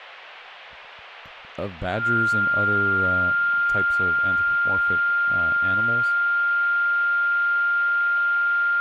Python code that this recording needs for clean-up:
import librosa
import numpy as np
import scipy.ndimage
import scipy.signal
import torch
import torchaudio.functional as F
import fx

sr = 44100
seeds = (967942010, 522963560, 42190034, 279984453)

y = fx.notch(x, sr, hz=1400.0, q=30.0)
y = fx.noise_reduce(y, sr, print_start_s=0.54, print_end_s=1.04, reduce_db=27.0)